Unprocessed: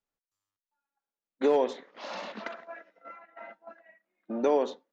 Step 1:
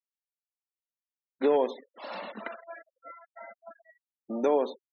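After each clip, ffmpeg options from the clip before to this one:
-af "afftfilt=real='re*gte(hypot(re,im),0.00891)':imag='im*gte(hypot(re,im),0.00891)':win_size=1024:overlap=0.75"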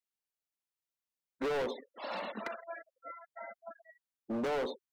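-af "asoftclip=type=hard:threshold=-31dB"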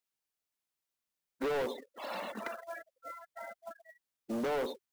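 -filter_complex "[0:a]asplit=2[a][b];[b]alimiter=level_in=14.5dB:limit=-24dB:level=0:latency=1:release=33,volume=-14.5dB,volume=-2dB[c];[a][c]amix=inputs=2:normalize=0,acrusher=bits=4:mode=log:mix=0:aa=0.000001,volume=-3.5dB"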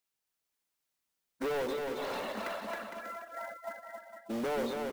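-filter_complex "[0:a]asplit=2[a][b];[b]aeval=exprs='(mod(56.2*val(0)+1,2)-1)/56.2':c=same,volume=-10.5dB[c];[a][c]amix=inputs=2:normalize=0,aecho=1:1:270|459|591.3|683.9|748.7:0.631|0.398|0.251|0.158|0.1"

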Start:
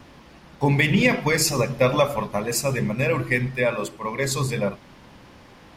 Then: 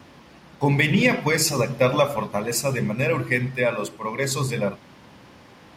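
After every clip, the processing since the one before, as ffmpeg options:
-af "highpass=79"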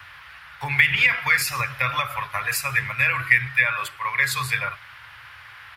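-filter_complex "[0:a]acrossover=split=340[a][b];[b]acompressor=threshold=-23dB:ratio=6[c];[a][c]amix=inputs=2:normalize=0,firequalizer=gain_entry='entry(110,0);entry(190,-28);entry(730,-6);entry(1400,14);entry(6400,-5);entry(11000,6)':delay=0.05:min_phase=1"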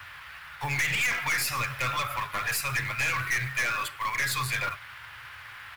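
-af "acrusher=bits=4:mode=log:mix=0:aa=0.000001,aeval=exprs='(tanh(15.8*val(0)+0.25)-tanh(0.25))/15.8':c=same"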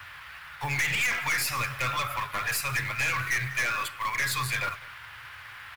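-af "aecho=1:1:199:0.0944"

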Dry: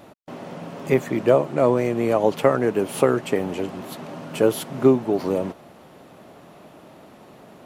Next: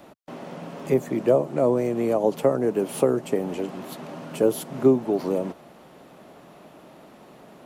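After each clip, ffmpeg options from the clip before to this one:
-filter_complex "[0:a]equalizer=f=98:t=o:w=0.31:g=-13,acrossover=split=270|890|5400[a][b][c][d];[c]acompressor=threshold=-40dB:ratio=6[e];[a][b][e][d]amix=inputs=4:normalize=0,volume=-1.5dB"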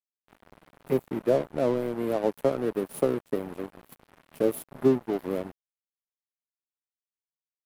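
-af "aemphasis=mode=reproduction:type=75kf,aexciter=amount=9.6:drive=7.2:freq=9.3k,aeval=exprs='sgn(val(0))*max(abs(val(0))-0.0237,0)':c=same,volume=-3dB"

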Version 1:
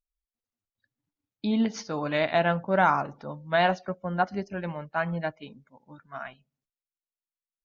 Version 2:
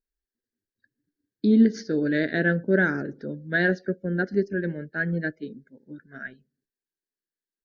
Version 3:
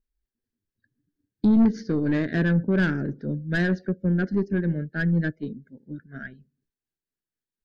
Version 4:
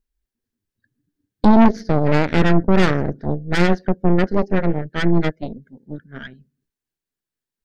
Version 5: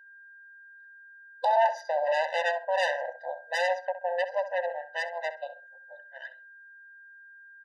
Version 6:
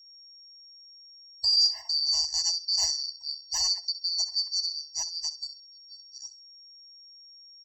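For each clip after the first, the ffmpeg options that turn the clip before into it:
-af "firequalizer=gain_entry='entry(110,0);entry(230,8);entry(400,12);entry(730,-16);entry(1100,-28);entry(1600,10);entry(2500,-14);entry(4300,1);entry(6500,-5)':delay=0.05:min_phase=1"
-af "tremolo=f=4.2:d=0.35,aeval=exprs='(tanh(11.2*val(0)+0.2)-tanh(0.2))/11.2':c=same,bass=f=250:g=12,treble=f=4k:g=-3"
-af "aeval=exprs='0.335*(cos(1*acos(clip(val(0)/0.335,-1,1)))-cos(1*PI/2))+0.133*(cos(6*acos(clip(val(0)/0.335,-1,1)))-cos(6*PI/2))':c=same,volume=3.5dB"
-filter_complex "[0:a]aeval=exprs='val(0)+0.00447*sin(2*PI*1600*n/s)':c=same,asplit=2[a][b];[b]adelay=65,lowpass=f=2.5k:p=1,volume=-11.5dB,asplit=2[c][d];[d]adelay=65,lowpass=f=2.5k:p=1,volume=0.25,asplit=2[e][f];[f]adelay=65,lowpass=f=2.5k:p=1,volume=0.25[g];[a][c][e][g]amix=inputs=4:normalize=0,afftfilt=real='re*eq(mod(floor(b*sr/1024/510),2),1)':imag='im*eq(mod(floor(b*sr/1024/510),2),1)':win_size=1024:overlap=0.75,volume=-3.5dB"
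-af "afftfilt=real='real(if(lt(b,736),b+184*(1-2*mod(floor(b/184),2)),b),0)':imag='imag(if(lt(b,736),b+184*(1-2*mod(floor(b/184),2)),b),0)':win_size=2048:overlap=0.75"

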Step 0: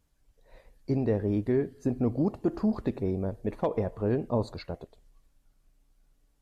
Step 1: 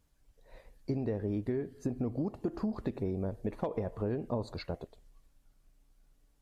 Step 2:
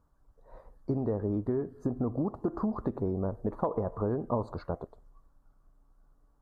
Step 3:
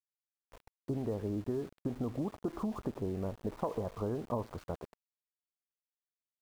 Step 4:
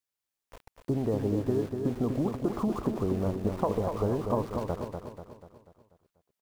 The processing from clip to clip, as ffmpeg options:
-af "acompressor=threshold=-30dB:ratio=6"
-af "highshelf=f=1.7k:t=q:w=3:g=-12.5,volume=2.5dB"
-af "aeval=exprs='val(0)*gte(abs(val(0)),0.00631)':c=same,volume=-5dB"
-af "aecho=1:1:244|488|732|976|1220|1464:0.501|0.241|0.115|0.0554|0.0266|0.0128,volume=6.5dB"

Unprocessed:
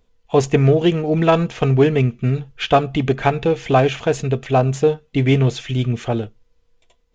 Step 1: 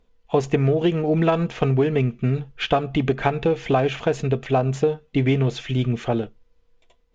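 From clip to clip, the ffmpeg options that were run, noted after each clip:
-af "lowpass=f=3.7k:p=1,equalizer=f=100:w=3.8:g=-8.5,acompressor=threshold=-15dB:ratio=6"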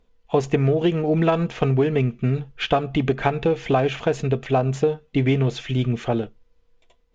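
-af anull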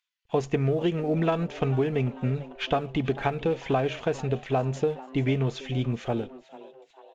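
-filter_complex "[0:a]acrossover=split=1500[a][b];[a]aeval=exprs='sgn(val(0))*max(abs(val(0))-0.00282,0)':c=same[c];[c][b]amix=inputs=2:normalize=0,asplit=5[d][e][f][g][h];[e]adelay=444,afreqshift=130,volume=-18.5dB[i];[f]adelay=888,afreqshift=260,volume=-24.5dB[j];[g]adelay=1332,afreqshift=390,volume=-30.5dB[k];[h]adelay=1776,afreqshift=520,volume=-36.6dB[l];[d][i][j][k][l]amix=inputs=5:normalize=0,volume=-5.5dB"

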